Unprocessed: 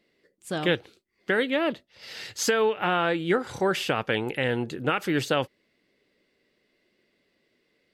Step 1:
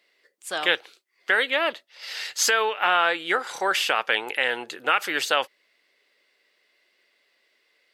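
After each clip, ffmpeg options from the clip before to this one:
-af "highpass=800,volume=6.5dB"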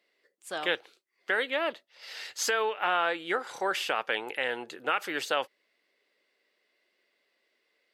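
-af "tiltshelf=f=880:g=3.5,volume=-5.5dB"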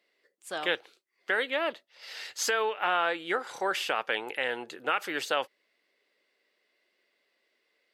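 -af anull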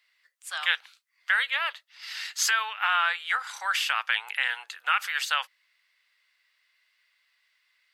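-af "highpass=f=1.1k:w=0.5412,highpass=f=1.1k:w=1.3066,volume=5.5dB"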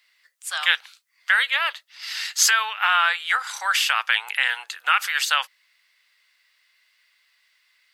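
-af "bass=f=250:g=-2,treble=f=4k:g=4,volume=5dB"

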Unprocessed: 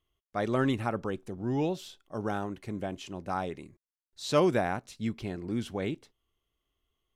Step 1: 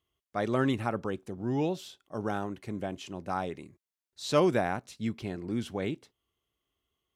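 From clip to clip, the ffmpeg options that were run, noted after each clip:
-af "highpass=69"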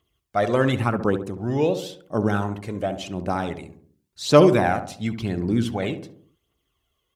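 -filter_complex "[0:a]aphaser=in_gain=1:out_gain=1:delay=2.1:decay=0.48:speed=0.92:type=triangular,asplit=2[a][b];[b]adelay=68,lowpass=f=1k:p=1,volume=-8dB,asplit=2[c][d];[d]adelay=68,lowpass=f=1k:p=1,volume=0.54,asplit=2[e][f];[f]adelay=68,lowpass=f=1k:p=1,volume=0.54,asplit=2[g][h];[h]adelay=68,lowpass=f=1k:p=1,volume=0.54,asplit=2[i][j];[j]adelay=68,lowpass=f=1k:p=1,volume=0.54,asplit=2[k][l];[l]adelay=68,lowpass=f=1k:p=1,volume=0.54[m];[c][e][g][i][k][m]amix=inputs=6:normalize=0[n];[a][n]amix=inputs=2:normalize=0,volume=7dB"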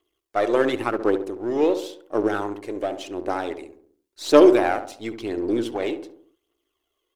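-af "aeval=exprs='if(lt(val(0),0),0.447*val(0),val(0))':c=same,lowshelf=f=240:t=q:w=3:g=-11"

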